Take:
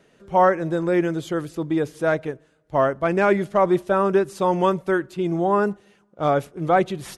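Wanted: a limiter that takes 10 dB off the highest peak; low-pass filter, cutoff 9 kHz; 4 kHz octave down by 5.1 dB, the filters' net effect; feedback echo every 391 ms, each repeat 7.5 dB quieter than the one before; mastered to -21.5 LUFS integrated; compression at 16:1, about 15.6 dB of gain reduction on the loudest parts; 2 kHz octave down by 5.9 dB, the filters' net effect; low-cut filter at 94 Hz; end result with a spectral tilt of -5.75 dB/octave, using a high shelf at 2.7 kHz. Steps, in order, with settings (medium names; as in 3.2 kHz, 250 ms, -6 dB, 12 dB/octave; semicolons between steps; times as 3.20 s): high-pass 94 Hz; low-pass 9 kHz; peaking EQ 2 kHz -9 dB; treble shelf 2.7 kHz +3 dB; peaking EQ 4 kHz -5.5 dB; compression 16:1, threshold -29 dBFS; peak limiter -28.5 dBFS; feedback delay 391 ms, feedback 42%, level -7.5 dB; trim +16 dB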